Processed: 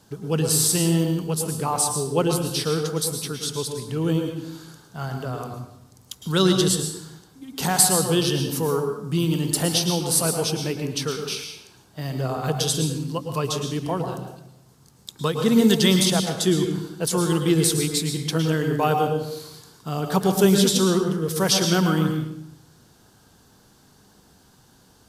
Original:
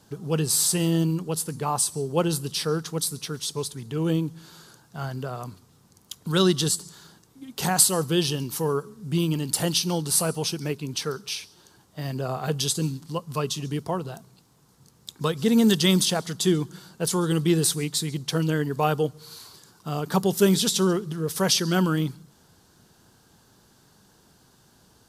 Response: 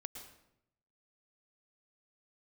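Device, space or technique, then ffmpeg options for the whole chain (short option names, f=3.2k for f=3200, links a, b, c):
bathroom: -filter_complex "[1:a]atrim=start_sample=2205[a];[0:a][a]afir=irnorm=-1:irlink=0,volume=6dB"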